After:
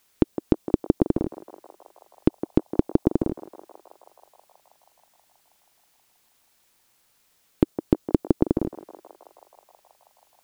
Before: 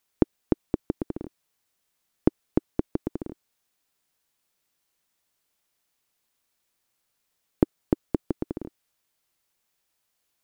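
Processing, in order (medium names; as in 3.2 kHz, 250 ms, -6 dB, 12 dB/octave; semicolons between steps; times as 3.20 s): band-passed feedback delay 160 ms, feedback 85%, band-pass 860 Hz, level -15.5 dB; dynamic bell 1.8 kHz, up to -5 dB, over -51 dBFS, Q 0.85; loudness maximiser +12.5 dB; trim -1 dB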